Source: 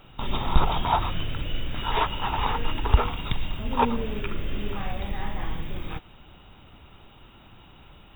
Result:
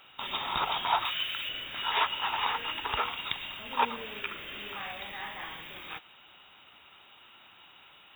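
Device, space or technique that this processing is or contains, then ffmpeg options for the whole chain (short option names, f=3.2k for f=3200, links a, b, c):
filter by subtraction: -filter_complex "[0:a]asettb=1/sr,asplit=3[a][b][c];[a]atrim=end=1.054[d];[b]atrim=start=1.05:end=1.49,asetpts=PTS-STARTPTS,afade=t=in:d=0.004:c=qsin,afade=t=out:st=0.436:d=0.004:c=qsin,tiltshelf=f=1.2k:g=-6.5[e];[c]atrim=start=1.486[f];[d][e]acrossfade=d=0.004:c1=hsin:c2=qsin[g];[g][f]acrossfade=d=0.004:c1=qsin:c2=hsin,asplit=2[h][i];[i]lowpass=2.1k,volume=-1[j];[h][j]amix=inputs=2:normalize=0"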